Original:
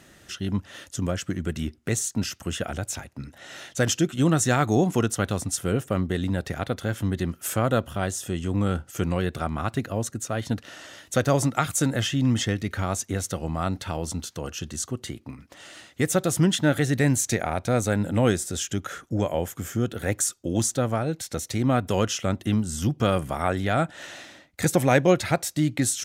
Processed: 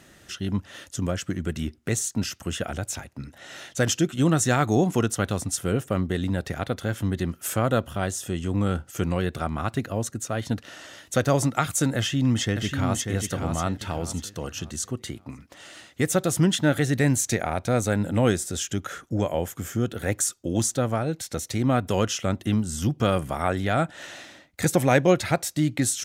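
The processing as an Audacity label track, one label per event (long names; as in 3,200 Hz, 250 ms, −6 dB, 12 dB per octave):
11.970000	13.070000	delay throw 590 ms, feedback 35%, level −6 dB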